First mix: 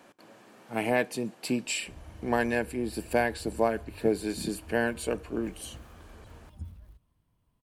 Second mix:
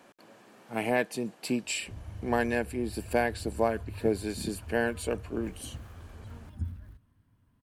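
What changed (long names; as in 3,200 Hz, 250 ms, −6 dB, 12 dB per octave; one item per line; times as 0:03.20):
background: add graphic EQ with 15 bands 100 Hz +10 dB, 250 Hz +10 dB, 1,600 Hz +10 dB
reverb: off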